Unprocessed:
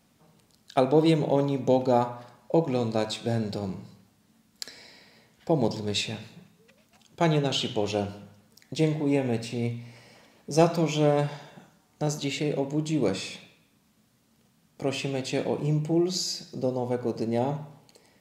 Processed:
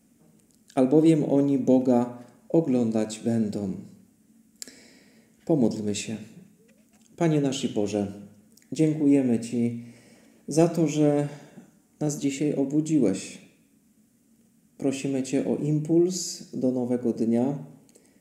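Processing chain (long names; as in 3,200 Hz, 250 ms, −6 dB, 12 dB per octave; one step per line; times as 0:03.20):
octave-band graphic EQ 125/250/1,000/4,000/8,000 Hz −5/+9/−10/−11/+7 dB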